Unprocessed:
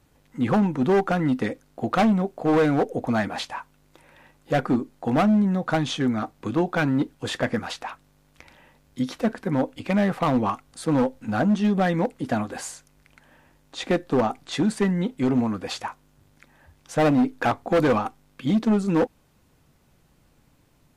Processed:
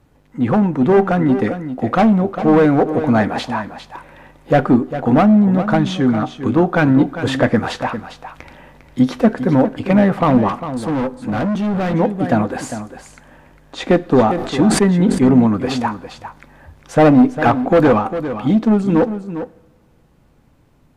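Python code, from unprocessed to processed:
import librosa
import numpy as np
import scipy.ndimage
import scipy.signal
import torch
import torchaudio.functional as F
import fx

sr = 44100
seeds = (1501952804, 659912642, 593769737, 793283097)

p1 = 10.0 ** (-25.0 / 20.0) * np.tanh(x / 10.0 ** (-25.0 / 20.0))
p2 = x + F.gain(torch.from_numpy(p1), -9.0).numpy()
p3 = fx.rider(p2, sr, range_db=10, speed_s=2.0)
p4 = p3 + fx.echo_single(p3, sr, ms=402, db=-11.0, dry=0)
p5 = fx.rev_double_slope(p4, sr, seeds[0], early_s=0.83, late_s=2.6, knee_db=-18, drr_db=18.0)
p6 = fx.overload_stage(p5, sr, gain_db=23.0, at=(10.48, 11.94))
p7 = fx.high_shelf(p6, sr, hz=2500.0, db=-10.5)
p8 = fx.sustainer(p7, sr, db_per_s=64.0, at=(14.27, 15.35), fade=0.02)
y = F.gain(torch.from_numpy(p8), 6.5).numpy()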